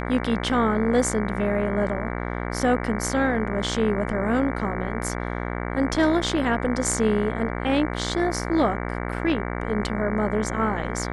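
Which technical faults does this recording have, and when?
buzz 60 Hz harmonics 38 -29 dBFS

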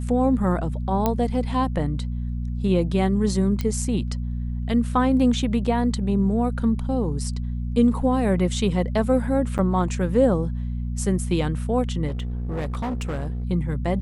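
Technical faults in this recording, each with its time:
hum 60 Hz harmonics 4 -27 dBFS
1.06 s: pop -8 dBFS
3.61 s: pop -13 dBFS
9.58–9.59 s: dropout 8.1 ms
12.07–13.45 s: clipped -23.5 dBFS

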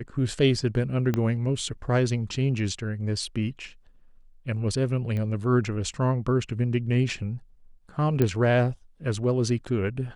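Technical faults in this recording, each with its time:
1.14 s: pop -13 dBFS
5.17 s: pop -21 dBFS
8.22 s: pop -11 dBFS

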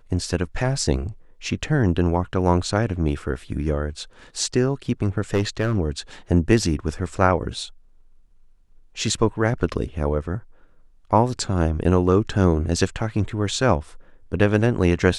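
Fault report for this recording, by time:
5.34–5.77 s: clipped -15 dBFS

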